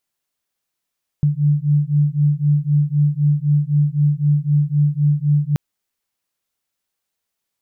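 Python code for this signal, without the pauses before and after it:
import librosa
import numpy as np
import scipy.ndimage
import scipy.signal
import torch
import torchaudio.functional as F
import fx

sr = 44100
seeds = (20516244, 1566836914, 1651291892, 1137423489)

y = fx.two_tone_beats(sr, length_s=4.33, hz=145.0, beat_hz=3.9, level_db=-16.5)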